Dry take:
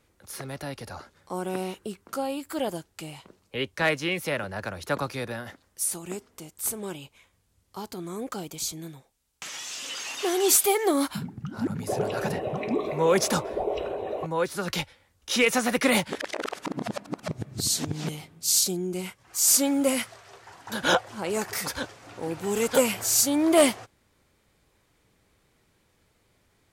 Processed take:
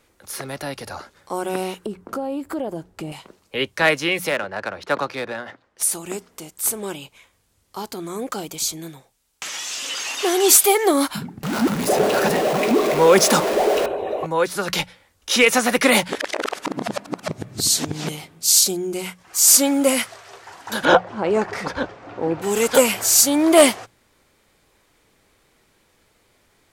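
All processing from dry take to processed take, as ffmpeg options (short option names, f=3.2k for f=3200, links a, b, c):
-filter_complex "[0:a]asettb=1/sr,asplit=3[a][b][c];[a]atrim=end=1.864[d];[b]atrim=start=1.86:end=3.12,asetpts=PTS-STARTPTS,afade=t=in:d=0.004:c=qsin,afade=t=out:st=1.256:d=0.004:c=qsin,tiltshelf=f=1.3k:g=9.5,acompressor=threshold=-30dB:ratio=4:attack=3.2:release=140:knee=1:detection=peak[e];[c]atrim=start=3.116[f];[d][e]acrossfade=d=0.004:c1=hsin:c2=qsin[g];[g][f]acrossfade=d=0.004:c1=qsin:c2=hsin,asettb=1/sr,asplit=3[h][i][j];[h]atrim=end=4.294[k];[i]atrim=start=4.29:end=5.83,asetpts=PTS-STARTPTS,afade=t=in:d=0.004:c=qsin,afade=t=out:st=1.536:d=0.004:c=qsin,lowshelf=f=150:g=-11,adynamicsmooth=sensitivity=5.5:basefreq=2.8k[l];[j]atrim=start=5.826[m];[k][l]acrossfade=d=0.004:c1=hsin:c2=qsin[n];[n][m]acrossfade=d=0.004:c1=qsin:c2=hsin,asettb=1/sr,asplit=3[o][p][q];[o]atrim=end=11.434[r];[p]atrim=start=11.43:end=13.86,asetpts=PTS-STARTPTS,afade=t=in:d=0.004:c=qsin,afade=t=out:st=2.426:d=0.004:c=qsin,aeval=exprs='val(0)+0.5*0.0447*sgn(val(0))':c=same,lowshelf=f=140:t=q:w=1.5:g=-8[s];[q]atrim=start=13.856[t];[r][s]acrossfade=d=0.004:c1=hsin:c2=qsin[u];[u][t]acrossfade=d=0.004:c1=qsin:c2=hsin,asettb=1/sr,asplit=3[v][w][x];[v]atrim=end=20.854[y];[w]atrim=start=20.85:end=22.42,asetpts=PTS-STARTPTS,afade=t=in:d=0.004:c=qsin,afade=t=out:st=1.566:d=0.004:c=qsin,tiltshelf=f=1.4k:g=4.5,adynamicsmooth=sensitivity=0.5:basefreq=4.1k[z];[x]atrim=start=22.416[aa];[y][z]acrossfade=d=0.004:c1=hsin:c2=qsin[ab];[ab][aa]acrossfade=d=0.004:c1=qsin:c2=hsin,equalizer=f=93:t=o:w=2.6:g=-6.5,bandreject=f=60:t=h:w=6,bandreject=f=120:t=h:w=6,bandreject=f=180:t=h:w=6,volume=7.5dB"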